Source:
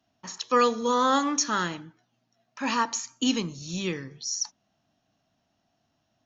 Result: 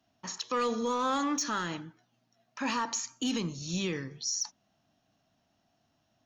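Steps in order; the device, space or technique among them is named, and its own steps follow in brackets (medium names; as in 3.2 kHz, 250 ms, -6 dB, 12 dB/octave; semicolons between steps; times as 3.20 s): soft clipper into limiter (saturation -16 dBFS, distortion -18 dB; peak limiter -23.5 dBFS, peak gain reduction 7 dB)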